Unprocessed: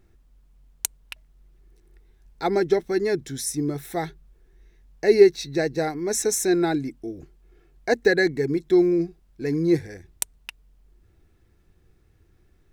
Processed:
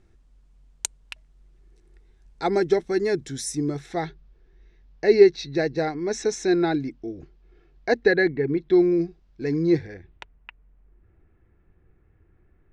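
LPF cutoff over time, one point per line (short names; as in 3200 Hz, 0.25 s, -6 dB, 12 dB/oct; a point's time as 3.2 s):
LPF 24 dB/oct
3.61 s 9100 Hz
4.05 s 5300 Hz
7.91 s 5300 Hz
8.43 s 2900 Hz
8.96 s 5800 Hz
9.67 s 5800 Hz
10.36 s 2300 Hz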